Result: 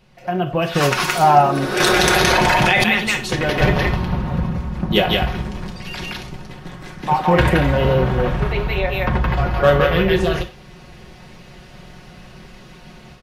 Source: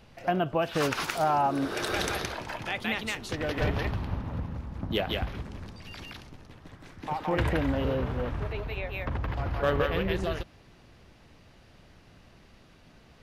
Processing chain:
comb filter 5.5 ms, depth 62%
automatic gain control gain up to 14 dB
reverb whose tail is shaped and stops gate 130 ms falling, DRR 5.5 dB
0:01.80–0:02.84: envelope flattener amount 100%
level −1.5 dB

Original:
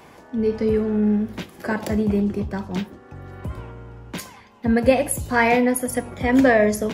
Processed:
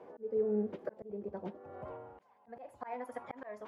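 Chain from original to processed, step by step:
phase-vocoder stretch with locked phases 0.53×
band-pass filter sweep 480 Hz → 1,000 Hz, 0:01.11–0:03.21
volume swells 727 ms
level +2.5 dB

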